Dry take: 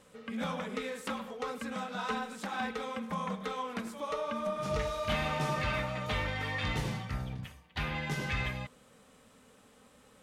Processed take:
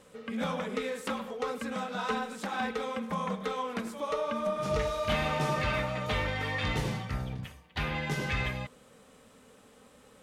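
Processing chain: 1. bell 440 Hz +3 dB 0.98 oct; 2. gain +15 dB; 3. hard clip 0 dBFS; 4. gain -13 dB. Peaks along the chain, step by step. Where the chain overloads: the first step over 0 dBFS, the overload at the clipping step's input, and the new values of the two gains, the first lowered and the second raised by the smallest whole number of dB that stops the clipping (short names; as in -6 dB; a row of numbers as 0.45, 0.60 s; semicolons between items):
-19.5, -4.5, -4.5, -17.5 dBFS; no overload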